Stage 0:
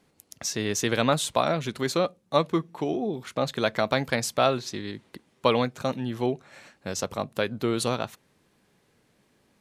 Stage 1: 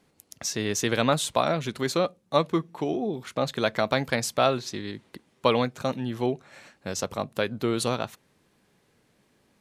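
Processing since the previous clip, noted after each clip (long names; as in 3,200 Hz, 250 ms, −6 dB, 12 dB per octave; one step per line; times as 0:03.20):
no processing that can be heard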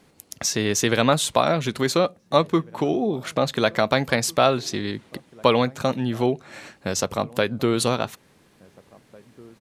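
in parallel at −0.5 dB: downward compressor, threshold −32 dBFS, peak gain reduction 15.5 dB
on the sum: slap from a distant wall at 300 metres, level −24 dB
level +2.5 dB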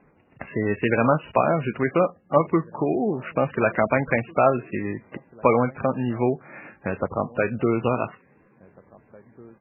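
low-pass that shuts in the quiet parts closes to 2,000 Hz, open at −19 dBFS
MP3 8 kbit/s 11,025 Hz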